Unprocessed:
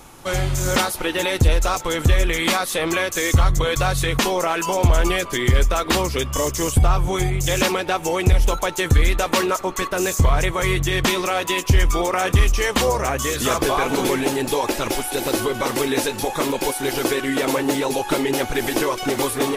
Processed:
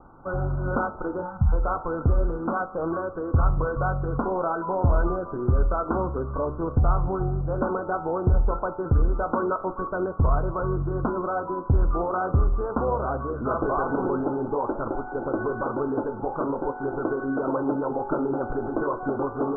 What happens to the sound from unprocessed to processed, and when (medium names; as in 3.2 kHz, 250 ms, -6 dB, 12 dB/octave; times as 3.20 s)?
1.22–1.53 s: spectral selection erased 220–710 Hz
whole clip: Chebyshev low-pass 1.5 kHz, order 10; de-hum 50.17 Hz, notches 29; trim -3.5 dB